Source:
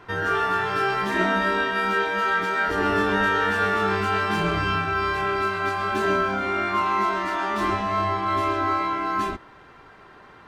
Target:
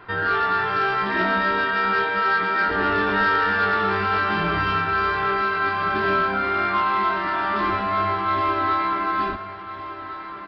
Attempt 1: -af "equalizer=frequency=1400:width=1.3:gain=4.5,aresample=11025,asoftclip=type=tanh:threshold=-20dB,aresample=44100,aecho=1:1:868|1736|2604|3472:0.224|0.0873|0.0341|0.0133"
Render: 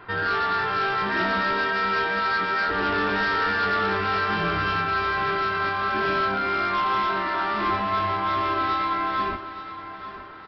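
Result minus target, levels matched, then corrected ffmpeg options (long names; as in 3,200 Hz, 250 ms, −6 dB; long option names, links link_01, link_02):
echo 539 ms early; soft clipping: distortion +8 dB
-af "equalizer=frequency=1400:width=1.3:gain=4.5,aresample=11025,asoftclip=type=tanh:threshold=-13.5dB,aresample=44100,aecho=1:1:1407|2814|4221|5628:0.224|0.0873|0.0341|0.0133"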